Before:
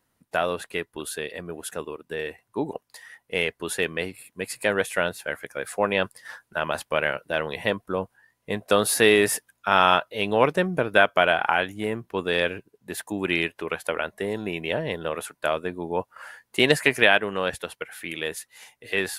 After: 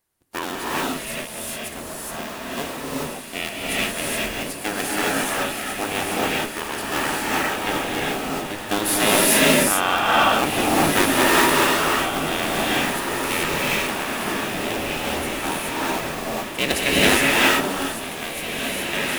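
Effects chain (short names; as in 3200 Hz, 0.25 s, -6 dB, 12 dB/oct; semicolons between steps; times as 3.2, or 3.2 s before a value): cycle switcher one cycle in 2, inverted; in parallel at -10 dB: sample gate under -21 dBFS; on the sum: high shelf 4200 Hz +8.5 dB; on a send: diffused feedback echo 1.895 s, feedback 42%, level -8.5 dB; on the sum: transient shaper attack 0 dB, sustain +5 dB; non-linear reverb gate 0.45 s rising, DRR -6 dB; gain -8 dB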